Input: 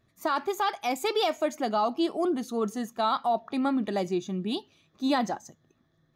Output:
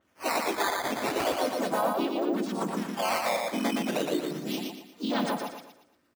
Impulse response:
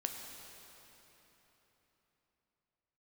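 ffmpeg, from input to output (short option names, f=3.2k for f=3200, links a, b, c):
-filter_complex "[0:a]asplit=3[a][b][c];[b]asetrate=35002,aresample=44100,atempo=1.25992,volume=-16dB[d];[c]asetrate=66075,aresample=44100,atempo=0.66742,volume=-13dB[e];[a][d][e]amix=inputs=3:normalize=0,aecho=1:1:3.3:0.69,asplit=4[f][g][h][i];[g]asetrate=33038,aresample=44100,atempo=1.33484,volume=-6dB[j];[h]asetrate=37084,aresample=44100,atempo=1.18921,volume=0dB[k];[i]asetrate=52444,aresample=44100,atempo=0.840896,volume=-6dB[l];[f][j][k][l]amix=inputs=4:normalize=0,alimiter=limit=-15dB:level=0:latency=1:release=24,acrusher=samples=9:mix=1:aa=0.000001:lfo=1:lforange=14.4:lforate=0.35,highpass=f=330:p=1,aecho=1:1:117|234|351|468|585:0.668|0.247|0.0915|0.0339|0.0125,adynamicequalizer=threshold=0.00708:dfrequency=4600:dqfactor=0.7:tfrequency=4600:tqfactor=0.7:attack=5:release=100:ratio=0.375:range=1.5:mode=cutabove:tftype=highshelf,volume=-3.5dB"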